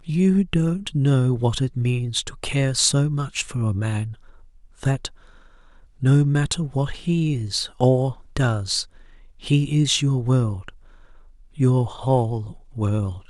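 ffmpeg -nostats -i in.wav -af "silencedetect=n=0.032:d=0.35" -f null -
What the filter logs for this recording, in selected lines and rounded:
silence_start: 4.13
silence_end: 4.83 | silence_duration: 0.70
silence_start: 5.07
silence_end: 6.03 | silence_duration: 0.95
silence_start: 8.83
silence_end: 9.44 | silence_duration: 0.61
silence_start: 10.69
silence_end: 11.59 | silence_duration: 0.90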